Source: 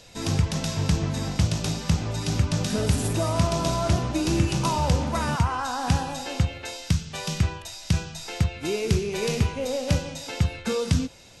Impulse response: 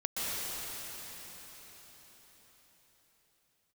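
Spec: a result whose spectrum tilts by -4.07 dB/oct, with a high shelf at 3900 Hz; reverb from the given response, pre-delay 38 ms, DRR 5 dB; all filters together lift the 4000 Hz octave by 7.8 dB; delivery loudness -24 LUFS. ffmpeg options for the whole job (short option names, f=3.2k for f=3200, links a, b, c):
-filter_complex "[0:a]highshelf=f=3.9k:g=5,equalizer=f=4k:t=o:g=6.5,asplit=2[a][b];[1:a]atrim=start_sample=2205,adelay=38[c];[b][c]afir=irnorm=-1:irlink=0,volume=-13dB[d];[a][d]amix=inputs=2:normalize=0,volume=-1dB"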